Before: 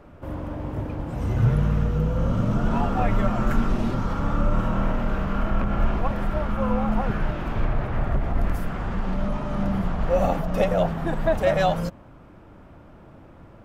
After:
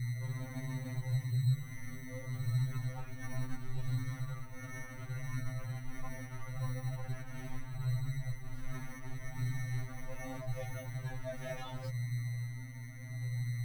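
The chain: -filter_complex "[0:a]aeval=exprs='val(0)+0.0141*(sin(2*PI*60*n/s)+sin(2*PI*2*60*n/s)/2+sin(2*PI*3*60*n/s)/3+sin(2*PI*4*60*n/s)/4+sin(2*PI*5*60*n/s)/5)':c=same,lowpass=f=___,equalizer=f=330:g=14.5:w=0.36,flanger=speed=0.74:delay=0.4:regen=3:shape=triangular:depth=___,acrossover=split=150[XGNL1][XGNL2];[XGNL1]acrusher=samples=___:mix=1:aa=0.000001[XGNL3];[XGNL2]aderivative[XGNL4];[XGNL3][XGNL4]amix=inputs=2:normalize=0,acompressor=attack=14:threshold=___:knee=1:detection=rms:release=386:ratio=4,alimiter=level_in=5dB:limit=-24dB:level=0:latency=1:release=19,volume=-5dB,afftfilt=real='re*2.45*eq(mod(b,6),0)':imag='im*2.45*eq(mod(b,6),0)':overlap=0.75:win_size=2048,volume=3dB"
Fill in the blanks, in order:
3800, 4.5, 22, -28dB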